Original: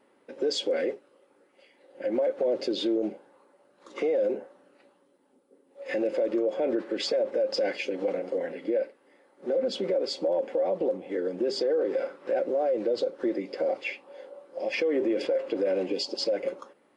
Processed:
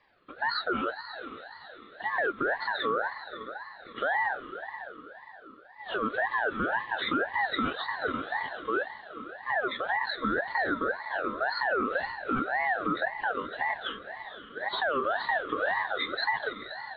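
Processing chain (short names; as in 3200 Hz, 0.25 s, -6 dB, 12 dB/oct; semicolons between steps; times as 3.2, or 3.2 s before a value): nonlinear frequency compression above 2400 Hz 4:1; diffused feedback echo 0.498 s, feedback 44%, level -11 dB; ring modulator with a swept carrier 1100 Hz, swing 30%, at 1.9 Hz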